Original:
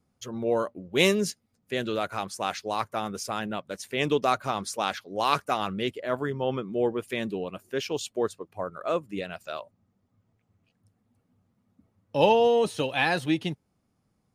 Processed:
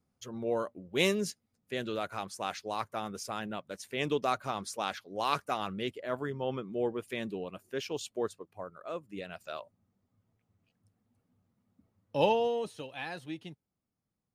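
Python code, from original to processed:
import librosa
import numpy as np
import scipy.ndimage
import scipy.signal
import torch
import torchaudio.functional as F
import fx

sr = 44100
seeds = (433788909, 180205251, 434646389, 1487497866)

y = fx.gain(x, sr, db=fx.line((8.31, -6.0), (8.89, -12.0), (9.41, -5.0), (12.21, -5.0), (12.85, -15.0)))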